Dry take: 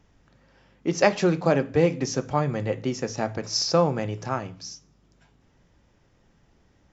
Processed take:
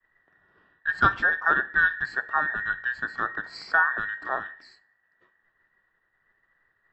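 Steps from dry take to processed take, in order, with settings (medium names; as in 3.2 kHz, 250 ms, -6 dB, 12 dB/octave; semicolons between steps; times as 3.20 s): every band turned upside down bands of 2 kHz; low-pass 1.9 kHz 12 dB/octave; expander -57 dBFS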